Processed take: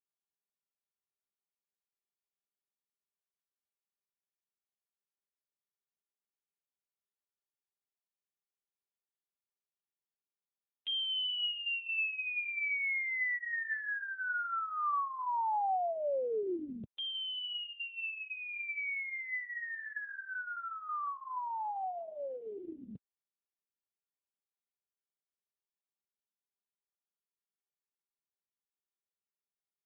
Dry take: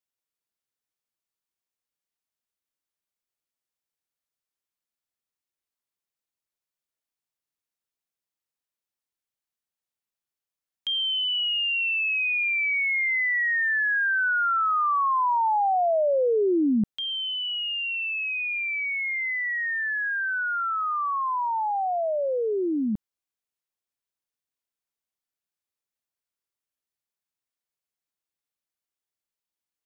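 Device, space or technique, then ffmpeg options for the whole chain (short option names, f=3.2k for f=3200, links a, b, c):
mobile call with aggressive noise cancelling: -af "highpass=f=170:p=1,afftdn=nr=34:nf=-48,volume=-5dB" -ar 8000 -c:a libopencore_amrnb -b:a 7950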